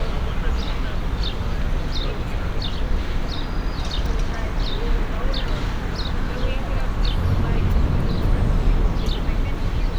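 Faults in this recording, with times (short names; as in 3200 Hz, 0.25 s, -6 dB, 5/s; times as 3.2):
4.06 gap 2.6 ms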